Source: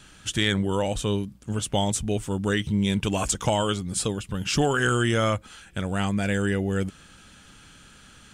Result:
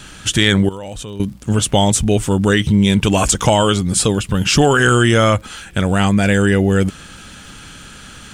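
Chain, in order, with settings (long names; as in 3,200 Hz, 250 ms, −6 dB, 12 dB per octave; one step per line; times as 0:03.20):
in parallel at +0.5 dB: brickwall limiter −21.5 dBFS, peak gain reduction 10.5 dB
0:00.69–0:01.20: on the sum: output level in coarse steps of 18 dB
surface crackle 56 per second −43 dBFS
level +7 dB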